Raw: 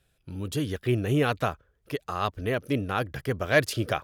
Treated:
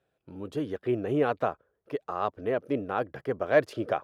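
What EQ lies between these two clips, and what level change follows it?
high-pass filter 650 Hz 12 dB per octave
spectral tilt −4.5 dB per octave
tilt shelving filter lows +5 dB
0.0 dB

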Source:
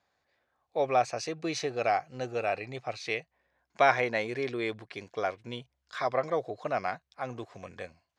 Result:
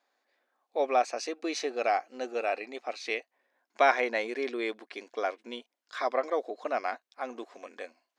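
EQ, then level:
linear-phase brick-wall high-pass 220 Hz
0.0 dB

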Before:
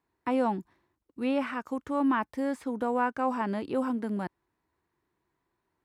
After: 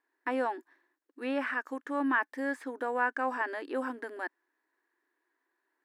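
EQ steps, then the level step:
linear-phase brick-wall high-pass 250 Hz
parametric band 1,700 Hz +14 dB 0.37 octaves
−3.5 dB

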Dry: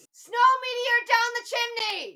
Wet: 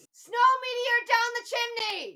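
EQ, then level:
low-shelf EQ 330 Hz +5.5 dB
−2.5 dB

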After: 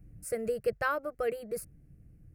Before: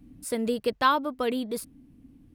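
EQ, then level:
parametric band 140 Hz +5.5 dB 1.2 octaves
low-shelf EQ 250 Hz +7 dB
phaser with its sweep stopped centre 960 Hz, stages 6
−3.5 dB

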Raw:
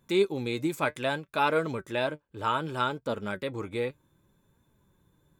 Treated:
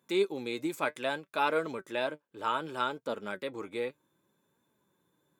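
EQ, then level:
high-pass filter 240 Hz 12 dB per octave
−3.0 dB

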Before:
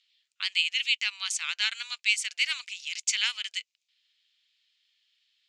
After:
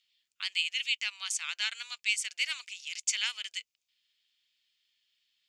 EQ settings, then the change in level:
low-shelf EQ 490 Hz +11.5 dB
high-shelf EQ 9,500 Hz +11 dB
notch filter 4,000 Hz, Q 19
−5.5 dB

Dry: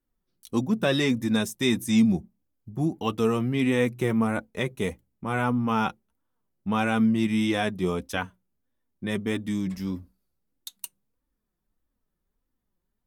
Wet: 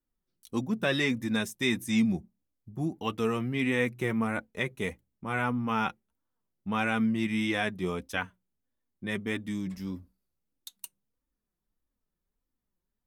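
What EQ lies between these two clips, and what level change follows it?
dynamic equaliser 2,000 Hz, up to +7 dB, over −43 dBFS, Q 1.2
−5.5 dB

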